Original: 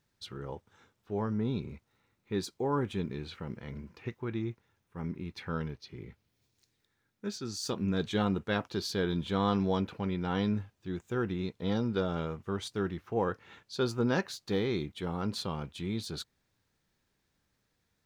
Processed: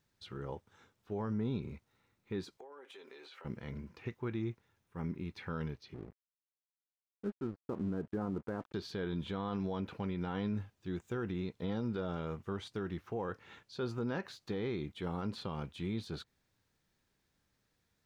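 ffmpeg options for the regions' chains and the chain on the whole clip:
ffmpeg -i in.wav -filter_complex "[0:a]asettb=1/sr,asplit=3[link_01][link_02][link_03];[link_01]atrim=end=2.574[link_04];[link_02]atrim=start=2.57:end=3.45,asetpts=PTS-STARTPTS,afade=type=in:duration=0.004:curve=qsin,afade=type=out:start_time=0.876:duration=0.004:curve=qsin,highpass=frequency=450:width=0.5412,highpass=frequency=450:width=1.3066,aecho=1:1:7.5:0.59,atrim=end_sample=38808,acompressor=threshold=-47dB:ratio=16:attack=3.2:release=140:knee=1:detection=peak[link_05];[link_03]atrim=start=3.446[link_06];[link_04][link_05]acrossfade=duration=0.004:curve1=hsin:curve2=qsin[link_07];[link_07][link_06]acrossfade=duration=0.004:curve1=qsin:curve2=hsin,asettb=1/sr,asplit=3[link_08][link_09][link_10];[link_08]atrim=end=5.944[link_11];[link_09]atrim=start=5.94:end=8.74,asetpts=PTS-STARTPTS,afade=type=in:duration=0.004:curve=qsin,afade=type=out:start_time=2.796:duration=0.004:curve=qsin,lowpass=frequency=1400:width=0.5412,lowpass=frequency=1400:width=1.3066,equalizer=frequency=310:width_type=o:width=1.1:gain=4,aeval=exprs='sgn(val(0))*max(abs(val(0))-0.00299,0)':channel_layout=same[link_12];[link_10]atrim=start=8.736[link_13];[link_11][link_12]acrossfade=duration=0.004:curve1=hsin:curve2=qsin[link_14];[link_14][link_13]acrossfade=duration=0.004:curve1=qsin:curve2=hsin,acrossover=split=3300[link_15][link_16];[link_16]acompressor=threshold=-55dB:ratio=4:attack=1:release=60[link_17];[link_15][link_17]amix=inputs=2:normalize=0,alimiter=level_in=2.5dB:limit=-24dB:level=0:latency=1:release=76,volume=-2.5dB,volume=-1.5dB" out.wav

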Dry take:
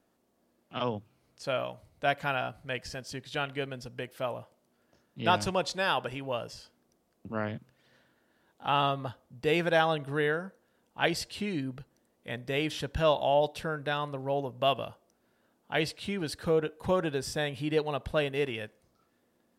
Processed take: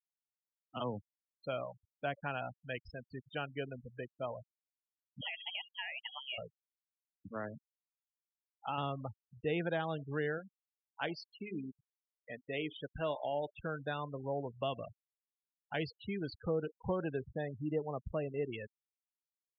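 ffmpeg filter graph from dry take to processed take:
ffmpeg -i in.wav -filter_complex "[0:a]asettb=1/sr,asplit=3[link_01][link_02][link_03];[link_01]atrim=end=5.214[link_04];[link_02]atrim=start=5.21:end=6.38,asetpts=PTS-STARTPTS,afade=type=in:duration=0.004:curve=qsin,afade=type=out:start_time=1.166:duration=0.004:curve=qsin,tiltshelf=frequency=920:gain=-3.5,acompressor=threshold=-29dB:ratio=16:attack=3.2:release=140:knee=1:detection=peak,lowpass=frequency=2900:width_type=q:width=0.5098,lowpass=frequency=2900:width_type=q:width=0.6013,lowpass=frequency=2900:width_type=q:width=0.9,lowpass=frequency=2900:width_type=q:width=2.563,afreqshift=-3400[link_05];[link_03]atrim=start=6.376[link_06];[link_04][link_05]acrossfade=duration=0.004:curve1=hsin:curve2=qsin[link_07];[link_07][link_06]acrossfade=duration=0.004:curve1=qsin:curve2=hsin,asettb=1/sr,asplit=3[link_08][link_09][link_10];[link_08]atrim=end=7.284[link_11];[link_09]atrim=start=7.28:end=8.78,asetpts=PTS-STARTPTS,afade=type=in:duration=0.004:curve=qsin,afade=type=out:start_time=1.496:duration=0.004:curve=qsin,asoftclip=type=hard:threshold=-21.5dB,lowshelf=frequency=220:gain=-9[link_12];[link_10]atrim=start=8.776[link_13];[link_11][link_12]acrossfade=duration=0.004:curve1=hsin:curve2=qsin[link_14];[link_14][link_13]acrossfade=duration=0.004:curve1=qsin:curve2=hsin,asettb=1/sr,asplit=3[link_15][link_16][link_17];[link_15]atrim=end=10.384[link_18];[link_16]atrim=start=10.38:end=13.55,asetpts=PTS-STARTPTS,afade=type=in:duration=0.004:curve=qsin,afade=type=out:start_time=3.166:duration=0.004:curve=qsin,equalizer=frequency=71:width=0.66:gain=-11,bandreject=frequency=207:width_type=h:width=4,bandreject=frequency=414:width_type=h:width=4,bandreject=frequency=621:width_type=h:width=4,bandreject=frequency=828:width_type=h:width=4,bandreject=frequency=1035:width_type=h:width=4,bandreject=frequency=1242:width_type=h:width=4,bandreject=frequency=1449:width_type=h:width=4,bandreject=frequency=1656:width_type=h:width=4,bandreject=frequency=1863:width_type=h:width=4,bandreject=frequency=2070:width_type=h:width=4,bandreject=frequency=2277:width_type=h:width=4,bandreject=frequency=2484:width_type=h:width=4,bandreject=frequency=2691:width_type=h:width=4,bandreject=frequency=2898:width_type=h:width=4,bandreject=frequency=3105:width_type=h:width=4,bandreject=frequency=3312:width_type=h:width=4,bandreject=frequency=3519:width_type=h:width=4,bandreject=frequency=3726:width_type=h:width=4,bandreject=frequency=3933:width_type=h:width=4,bandreject=frequency=4140:width_type=h:width=4,bandreject=frequency=4347:width_type=h:width=4,bandreject=frequency=4554:width_type=h:width=4,bandreject=frequency=4761:width_type=h:width=4,bandreject=frequency=4968:width_type=h:width=4,bandreject=frequency=5175:width_type=h:width=4,bandreject=frequency=5382:width_type=h:width=4,bandreject=frequency=5589:width_type=h:width=4,bandreject=frequency=5796:width_type=h:width=4,bandreject=frequency=6003:width_type=h:width=4,bandreject=frequency=6210:width_type=h:width=4,bandreject=frequency=6417:width_type=h:width=4,bandreject=frequency=6624:width_type=h:width=4,bandreject=frequency=6831:width_type=h:width=4,bandreject=frequency=7038:width_type=h:width=4,bandreject=frequency=7245:width_type=h:width=4,bandreject=frequency=7452:width_type=h:width=4,aeval=exprs='sgn(val(0))*max(abs(val(0))-0.00224,0)':channel_layout=same[link_19];[link_17]atrim=start=13.546[link_20];[link_18][link_19]acrossfade=duration=0.004:curve1=hsin:curve2=qsin[link_21];[link_21][link_20]acrossfade=duration=0.004:curve1=qsin:curve2=hsin,asettb=1/sr,asplit=3[link_22][link_23][link_24];[link_22]atrim=end=17.194[link_25];[link_23]atrim=start=17.19:end=18.53,asetpts=PTS-STARTPTS,afade=type=in:duration=0.004:curve=qsin,afade=type=out:start_time=1.336:duration=0.004:curve=qsin,highshelf=frequency=2200:gain=-10,bandreject=frequency=1500:width=7.8[link_26];[link_24]atrim=start=18.526[link_27];[link_25][link_26]acrossfade=duration=0.004:curve1=hsin:curve2=qsin[link_28];[link_28][link_27]acrossfade=duration=0.004:curve1=qsin:curve2=hsin,equalizer=frequency=8100:width=0.86:gain=-5,afftfilt=real='re*gte(hypot(re,im),0.0282)':imag='im*gte(hypot(re,im),0.0282)':win_size=1024:overlap=0.75,acrossover=split=350[link_29][link_30];[link_30]acompressor=threshold=-30dB:ratio=4[link_31];[link_29][link_31]amix=inputs=2:normalize=0,volume=-5dB" out.wav

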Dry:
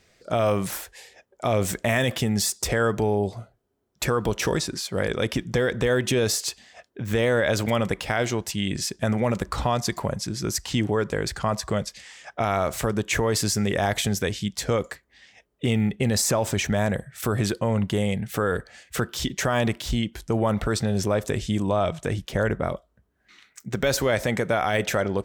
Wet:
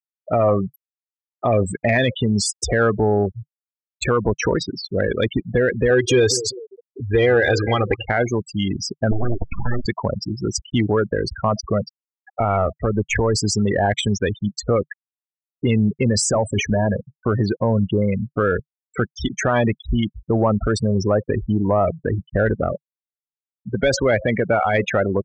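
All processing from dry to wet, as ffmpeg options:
ffmpeg -i in.wav -filter_complex "[0:a]asettb=1/sr,asplit=3[link_01][link_02][link_03];[link_01]atrim=end=5.904[link_04];[link_02]atrim=start=5.9:end=8.03,asetpts=PTS-STARTPTS,afade=type=in:duration=0.004:curve=qsin,afade=type=out:start_time=2.126:duration=0.004:curve=qsin,aecho=1:1:2.5:0.61,atrim=end_sample=93933,aeval=exprs='sgn(val(0))*max(abs(val(0))-0.00473,0)':channel_layout=same,aecho=1:1:196|392|588|784|980:0.224|0.116|0.0605|0.0315|0.0164,atrim=end_sample=93933[link_05];[link_03]atrim=start=8.026[link_06];[link_04][link_05]acrossfade=duration=0.004:curve1=hsin:curve2=qsin[link_07];[link_07][link_06]acrossfade=duration=0.004:curve1=qsin:curve2=hsin,asettb=1/sr,asplit=3[link_08][link_09][link_10];[link_08]atrim=end=9.114[link_11];[link_09]atrim=start=9.11:end=9.86,asetpts=PTS-STARTPTS,afade=type=in:duration=0.004:curve=qsin,afade=type=out:start_time=0.746:duration=0.004:curve=qsin,lowshelf=frequency=360:gain=2.5,aeval=exprs='abs(val(0))':channel_layout=same,acrossover=split=380|3000[link_12][link_13][link_14];[link_13]acompressor=threshold=-29dB:ratio=4:attack=3.2:release=140:knee=2.83:detection=peak[link_15];[link_12][link_15][link_14]amix=inputs=3:normalize=0[link_16];[link_10]atrim=start=9.856[link_17];[link_11][link_16]acrossfade=duration=0.004:curve1=hsin:curve2=qsin[link_18];[link_18][link_17]acrossfade=duration=0.004:curve1=qsin:curve2=hsin,asettb=1/sr,asplit=3[link_19][link_20][link_21];[link_19]atrim=end=12.404[link_22];[link_20]atrim=start=12.4:end=13.36,asetpts=PTS-STARTPTS,afade=type=in:duration=0.004:curve=qsin,afade=type=out:start_time=0.956:duration=0.004:curve=qsin,aeval=exprs='if(lt(val(0),0),0.708*val(0),val(0))':channel_layout=same,equalizer=frequency=84:width=1.8:gain=5[link_23];[link_21]atrim=start=13.356[link_24];[link_22][link_23]acrossfade=duration=0.004:curve1=hsin:curve2=qsin[link_25];[link_25][link_24]acrossfade=duration=0.004:curve1=qsin:curve2=hsin,asettb=1/sr,asplit=3[link_26][link_27][link_28];[link_26]atrim=end=16.134[link_29];[link_27]atrim=start=16.13:end=17.09,asetpts=PTS-STARTPTS,afade=type=in:duration=0.004:curve=qsin,afade=type=out:start_time=0.956:duration=0.004:curve=qsin,bandreject=frequency=60:width_type=h:width=6,bandreject=frequency=120:width_type=h:width=6,bandreject=frequency=180:width_type=h:width=6,bandreject=frequency=240:width_type=h:width=6,bandreject=frequency=300:width_type=h:width=6,bandreject=frequency=360:width_type=h:width=6,bandreject=frequency=420:width_type=h:width=6,bandreject=frequency=480:width_type=h:width=6,aeval=exprs='clip(val(0),-1,0.106)':channel_layout=same[link_30];[link_28]atrim=start=17.086[link_31];[link_29][link_30]acrossfade=duration=0.004:curve1=hsin:curve2=qsin[link_32];[link_32][link_31]acrossfade=duration=0.004:curve1=qsin:curve2=hsin,afftfilt=real='re*gte(hypot(re,im),0.0891)':imag='im*gte(hypot(re,im),0.0891)':win_size=1024:overlap=0.75,equalizer=frequency=150:width_type=o:width=0.27:gain=-6,acontrast=73,volume=-1dB" out.wav

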